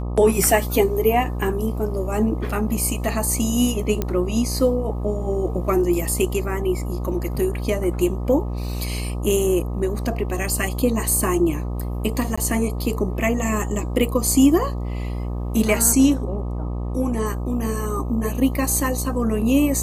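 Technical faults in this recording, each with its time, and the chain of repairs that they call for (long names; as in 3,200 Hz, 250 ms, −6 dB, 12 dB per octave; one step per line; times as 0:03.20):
mains buzz 60 Hz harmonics 21 −26 dBFS
0:04.02: click −9 dBFS
0:12.36–0:12.38: drop-out 15 ms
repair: click removal
hum removal 60 Hz, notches 21
repair the gap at 0:12.36, 15 ms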